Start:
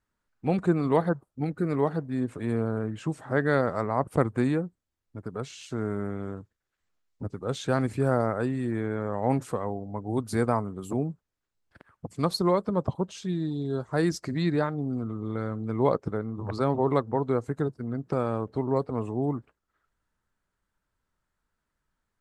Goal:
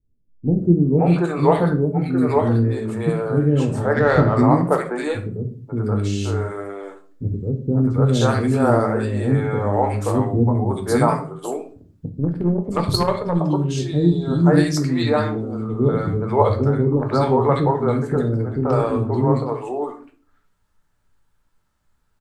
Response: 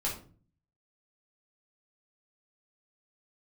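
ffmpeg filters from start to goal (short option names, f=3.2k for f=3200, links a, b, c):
-filter_complex "[0:a]acrossover=split=390|1600[a][b][c];[b]adelay=530[d];[c]adelay=600[e];[a][d][e]amix=inputs=3:normalize=0,asettb=1/sr,asplit=3[f][g][h];[f]atrim=end=3.934[i];[g]atrim=start=3.93:end=4.37,asetpts=PTS-STARTPTS,afade=t=in:d=0.004:c=qsin,afade=t=out:st=0.436:d=0.004:c=qsin,adynamicsmooth=sensitivity=4:basefreq=3.5k[j];[h]atrim=start=4.366[k];[i][j]acrossfade=d=0.004:c1=hsin:c2=qsin[l];[l][k]acrossfade=d=0.004:c1=qsin:c2=hsin,asplit=2[m][n];[1:a]atrim=start_sample=2205[o];[n][o]afir=irnorm=-1:irlink=0,volume=-4dB[p];[m][p]amix=inputs=2:normalize=0,asettb=1/sr,asplit=3[q][r][s];[q]atrim=end=12.094[t];[r]atrim=start=12.09:end=13.4,asetpts=PTS-STARTPTS,afade=t=in:d=0.004:c=qsin,afade=t=out:st=1.306:d=0.004:c=qsin,aeval=exprs='0.376*(cos(1*acos(clip(val(0)/0.376,-1,1)))-cos(1*PI/2))+0.0376*(cos(3*acos(clip(val(0)/0.376,-1,1)))-cos(3*PI/2))+0.015*(cos(6*acos(clip(val(0)/0.376,-1,1)))-cos(6*PI/2))':c=same[u];[s]atrim=start=13.396[v];[t][u]acrossfade=d=0.004:c1=hsin:c2=qsin[w];[w][v]acrossfade=d=0.004:c1=qsin:c2=hsin,volume=5.5dB"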